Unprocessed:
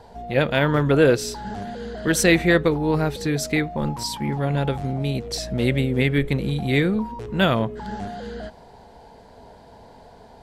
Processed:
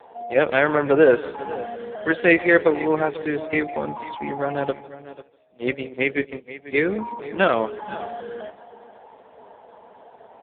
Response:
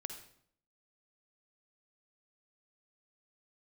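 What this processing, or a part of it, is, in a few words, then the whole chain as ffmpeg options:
satellite phone: -filter_complex "[0:a]lowpass=frequency=7800:width=0.5412,lowpass=frequency=7800:width=1.3066,asplit=3[link_01][link_02][link_03];[link_01]afade=type=out:start_time=4.71:duration=0.02[link_04];[link_02]agate=range=-27dB:threshold=-19dB:ratio=16:detection=peak,afade=type=in:start_time=4.71:duration=0.02,afade=type=out:start_time=6.82:duration=0.02[link_05];[link_03]afade=type=in:start_time=6.82:duration=0.02[link_06];[link_04][link_05][link_06]amix=inputs=3:normalize=0,highpass=frequency=120:poles=1,highpass=350,lowpass=3300,aecho=1:1:155|310|465:0.112|0.0415|0.0154,aecho=1:1:493:0.158,volume=4.5dB" -ar 8000 -c:a libopencore_amrnb -b:a 5150

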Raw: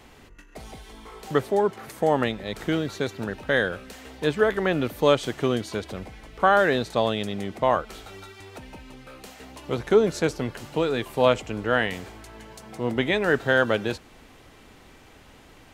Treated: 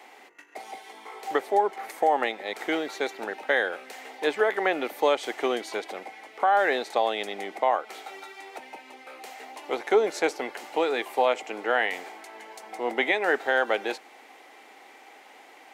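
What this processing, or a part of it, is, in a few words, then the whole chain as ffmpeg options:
laptop speaker: -af "highpass=frequency=320:width=0.5412,highpass=frequency=320:width=1.3066,equalizer=frequency=790:width_type=o:width=0.36:gain=11,equalizer=frequency=2100:width_type=o:width=0.4:gain=8.5,alimiter=limit=-10dB:level=0:latency=1:release=236,volume=-1.5dB"

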